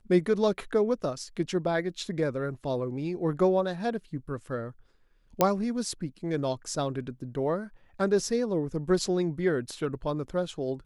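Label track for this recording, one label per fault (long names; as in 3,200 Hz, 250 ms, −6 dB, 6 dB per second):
5.410000	5.410000	click −7 dBFS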